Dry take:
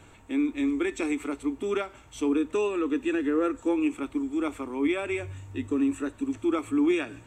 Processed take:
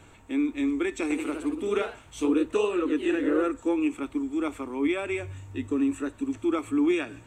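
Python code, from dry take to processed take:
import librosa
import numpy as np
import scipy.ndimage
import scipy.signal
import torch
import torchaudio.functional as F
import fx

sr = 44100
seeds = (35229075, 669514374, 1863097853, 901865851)

y = fx.echo_pitch(x, sr, ms=82, semitones=1, count=3, db_per_echo=-6.0, at=(1.02, 3.6))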